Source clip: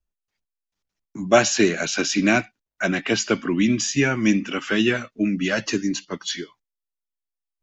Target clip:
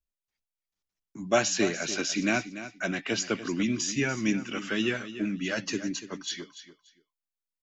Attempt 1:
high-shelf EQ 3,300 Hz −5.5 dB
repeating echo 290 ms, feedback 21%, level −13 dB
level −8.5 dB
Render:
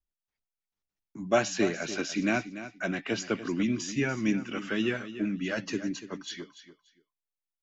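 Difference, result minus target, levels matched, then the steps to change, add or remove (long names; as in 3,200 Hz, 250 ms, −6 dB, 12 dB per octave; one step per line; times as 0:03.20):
8,000 Hz band −6.0 dB
change: high-shelf EQ 3,300 Hz +3.5 dB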